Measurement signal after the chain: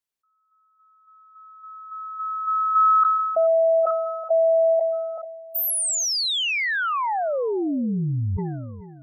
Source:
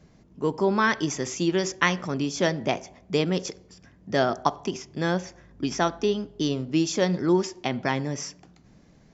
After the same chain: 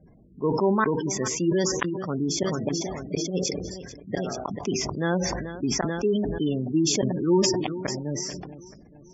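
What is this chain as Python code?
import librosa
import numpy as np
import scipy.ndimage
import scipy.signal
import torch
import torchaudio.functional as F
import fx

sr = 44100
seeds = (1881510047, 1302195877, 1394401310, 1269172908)

y = fx.gate_flip(x, sr, shuts_db=-12.0, range_db=-37)
y = fx.echo_feedback(y, sr, ms=436, feedback_pct=51, wet_db=-16.5)
y = fx.spec_gate(y, sr, threshold_db=-20, keep='strong')
y = fx.sustainer(y, sr, db_per_s=33.0)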